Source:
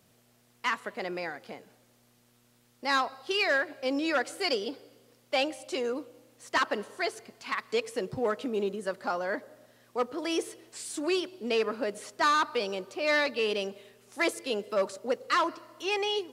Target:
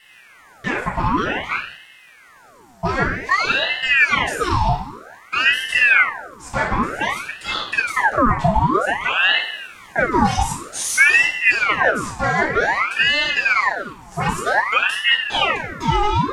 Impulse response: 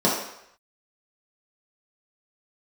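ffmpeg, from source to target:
-filter_complex "[0:a]highpass=310,lowshelf=f=430:g=6,alimiter=level_in=1.58:limit=0.0631:level=0:latency=1:release=86,volume=0.631,asettb=1/sr,asplit=3[s0][s1][s2];[s0]atrim=end=9.344[s3];[s1]atrim=start=9.34:end=11.75,asetpts=PTS-STARTPTS,afade=t=in:d=0.004:c=qsin,afade=t=out:st=2.406:d=0.004:c=qsin,equalizer=f=7800:w=0.4:g=6.5[s4];[s2]atrim=start=11.746[s5];[s3][s4]acrossfade=d=0.004:c1=hsin:c2=qsin[s6];[s6][s5]acrossfade=d=0.004:c1=qsin:c2=hsin[s7];[1:a]atrim=start_sample=2205,asetrate=61740,aresample=44100[s8];[s7][s8]afir=irnorm=-1:irlink=0,aeval=exprs='val(0)*sin(2*PI*1400*n/s+1400*0.7/0.53*sin(2*PI*0.53*n/s))':c=same,volume=1.33"

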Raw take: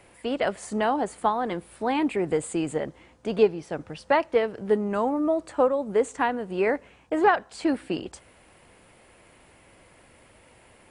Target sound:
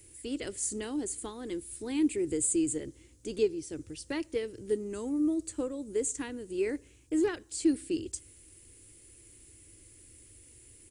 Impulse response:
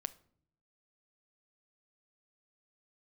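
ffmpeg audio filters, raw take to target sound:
-filter_complex "[0:a]firequalizer=gain_entry='entry(110,0);entry(170,-18);entry(320,-2);entry(670,-28);entry(2000,-14);entry(7000,7)':delay=0.05:min_phase=1,asplit=2[s0][s1];[1:a]atrim=start_sample=2205[s2];[s1][s2]afir=irnorm=-1:irlink=0,volume=0.355[s3];[s0][s3]amix=inputs=2:normalize=0"

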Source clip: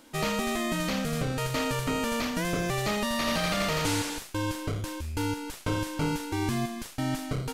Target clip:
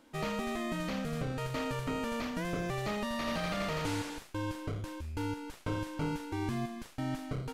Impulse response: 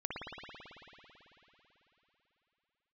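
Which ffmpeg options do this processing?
-af "highshelf=f=3700:g=-9,volume=0.531"

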